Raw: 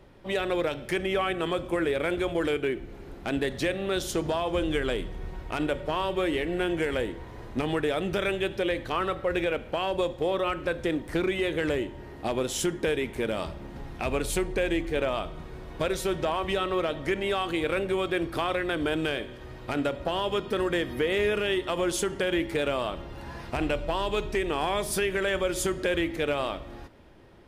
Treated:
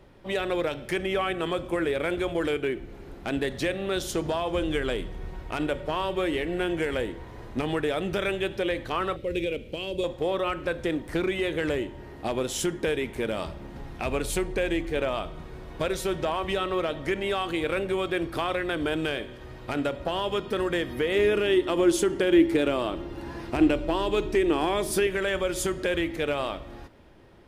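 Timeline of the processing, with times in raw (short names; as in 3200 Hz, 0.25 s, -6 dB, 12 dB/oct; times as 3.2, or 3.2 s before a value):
9.16–10.04 band shelf 1100 Hz -16 dB
21.15–25.07 bell 320 Hz +11.5 dB 0.52 oct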